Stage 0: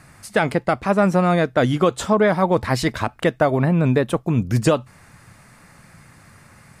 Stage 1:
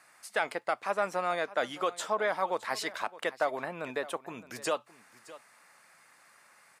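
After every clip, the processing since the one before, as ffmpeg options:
ffmpeg -i in.wav -af "highpass=630,aecho=1:1:615:0.126,volume=-8.5dB" out.wav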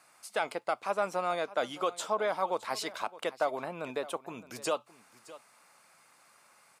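ffmpeg -i in.wav -af "equalizer=frequency=1800:width=3.7:gain=-9" out.wav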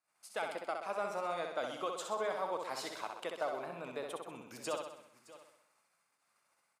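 ffmpeg -i in.wav -filter_complex "[0:a]agate=range=-21dB:threshold=-60dB:ratio=16:detection=peak,asplit=2[link_01][link_02];[link_02]aecho=0:1:64|128|192|256|320|384|448:0.562|0.309|0.17|0.0936|0.0515|0.0283|0.0156[link_03];[link_01][link_03]amix=inputs=2:normalize=0,volume=-7.5dB" out.wav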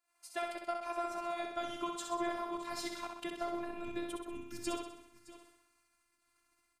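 ffmpeg -i in.wav -af "afftfilt=real='hypot(re,im)*cos(PI*b)':imag='0':win_size=512:overlap=0.75,asubboost=boost=11:cutoff=190,volume=4.5dB" out.wav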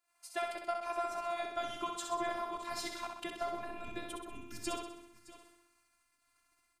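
ffmpeg -i in.wav -af "bandreject=frequency=86.11:width_type=h:width=4,bandreject=frequency=172.22:width_type=h:width=4,bandreject=frequency=258.33:width_type=h:width=4,bandreject=frequency=344.44:width_type=h:width=4,bandreject=frequency=430.55:width_type=h:width=4,volume=1.5dB" out.wav

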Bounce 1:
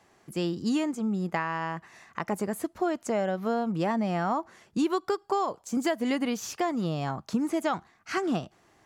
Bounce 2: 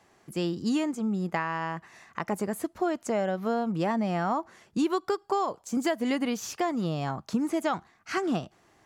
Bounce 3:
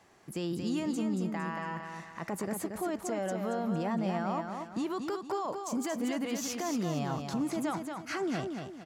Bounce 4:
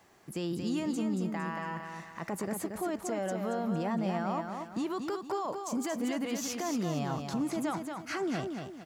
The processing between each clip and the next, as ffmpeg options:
ffmpeg -i in.wav -af anull out.wav
ffmpeg -i in.wav -filter_complex "[0:a]alimiter=level_in=2.5dB:limit=-24dB:level=0:latency=1:release=15,volume=-2.5dB,asplit=2[link_01][link_02];[link_02]aecho=0:1:229|458|687|916|1145:0.531|0.202|0.0767|0.0291|0.0111[link_03];[link_01][link_03]amix=inputs=2:normalize=0" out.wav
ffmpeg -i in.wav -af "acrusher=bits=11:mix=0:aa=0.000001" out.wav

